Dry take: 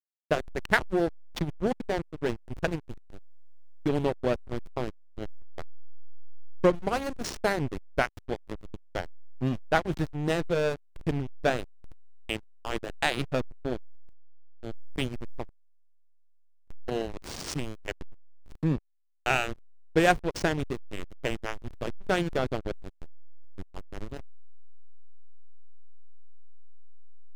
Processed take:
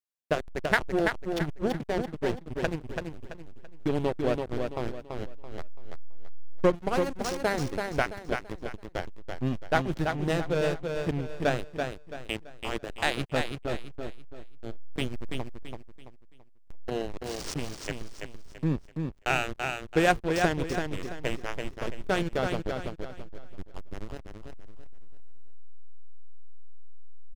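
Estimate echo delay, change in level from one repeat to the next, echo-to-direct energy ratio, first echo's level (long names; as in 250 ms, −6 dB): 334 ms, −9.5 dB, −4.5 dB, −5.0 dB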